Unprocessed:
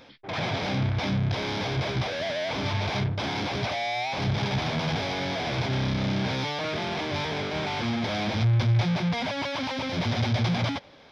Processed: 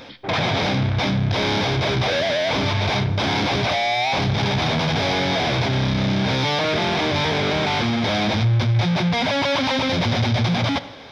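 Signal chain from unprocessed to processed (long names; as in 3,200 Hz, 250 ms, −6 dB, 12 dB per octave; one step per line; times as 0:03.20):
in parallel at −0.5 dB: compressor whose output falls as the input rises −32 dBFS, ratio −1
on the sum: hollow resonant body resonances 3,700 Hz, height 8 dB
convolution reverb RT60 1.1 s, pre-delay 30 ms, DRR 15 dB
level +3 dB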